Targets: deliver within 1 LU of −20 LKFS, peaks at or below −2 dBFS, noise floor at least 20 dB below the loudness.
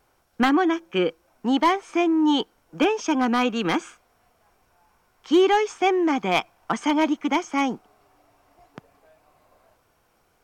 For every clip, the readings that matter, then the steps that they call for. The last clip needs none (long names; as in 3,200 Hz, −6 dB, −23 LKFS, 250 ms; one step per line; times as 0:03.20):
share of clipped samples 0.2%; peaks flattened at −11.5 dBFS; integrated loudness −22.5 LKFS; sample peak −11.5 dBFS; target loudness −20.0 LKFS
→ clipped peaks rebuilt −11.5 dBFS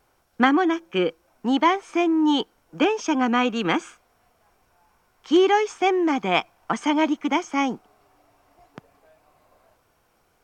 share of clipped samples 0.0%; integrated loudness −22.0 LKFS; sample peak −2.5 dBFS; target loudness −20.0 LKFS
→ level +2 dB
brickwall limiter −2 dBFS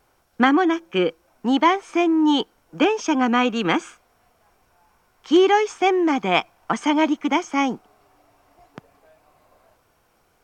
integrated loudness −20.5 LKFS; sample peak −2.0 dBFS; background noise floor −63 dBFS